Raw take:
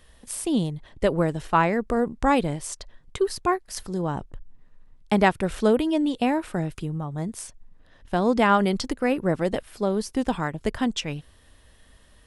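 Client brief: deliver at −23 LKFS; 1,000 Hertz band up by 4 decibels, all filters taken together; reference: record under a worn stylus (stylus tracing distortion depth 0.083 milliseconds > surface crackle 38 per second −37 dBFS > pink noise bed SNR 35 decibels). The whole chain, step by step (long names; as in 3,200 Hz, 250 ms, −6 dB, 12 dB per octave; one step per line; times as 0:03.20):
parametric band 1,000 Hz +5 dB
stylus tracing distortion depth 0.083 ms
surface crackle 38 per second −37 dBFS
pink noise bed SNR 35 dB
level +0.5 dB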